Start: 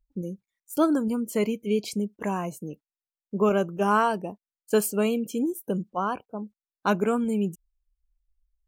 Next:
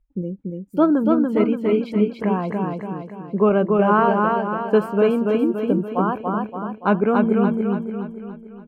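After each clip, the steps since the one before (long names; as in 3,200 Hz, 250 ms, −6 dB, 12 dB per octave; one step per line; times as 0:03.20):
high-frequency loss of the air 490 metres
on a send: repeating echo 286 ms, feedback 50%, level −3 dB
on the sum: level +6.5 dB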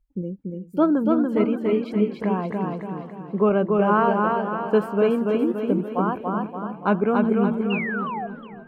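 sound drawn into the spectrogram fall, 0:07.70–0:08.27, 660–2,900 Hz −27 dBFS
feedback echo with a swinging delay time 365 ms, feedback 46%, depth 159 cents, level −17.5 dB
level −2.5 dB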